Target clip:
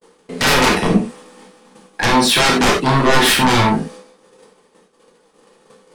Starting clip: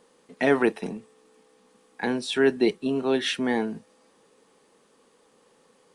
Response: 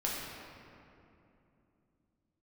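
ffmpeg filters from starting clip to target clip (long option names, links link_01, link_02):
-filter_complex "[0:a]aeval=exprs='0.376*sin(PI/2*8.91*val(0)/0.376)':channel_layout=same,agate=range=-49dB:threshold=-35dB:ratio=16:detection=peak[link_01];[1:a]atrim=start_sample=2205,atrim=end_sample=4410[link_02];[link_01][link_02]afir=irnorm=-1:irlink=0,volume=-4dB"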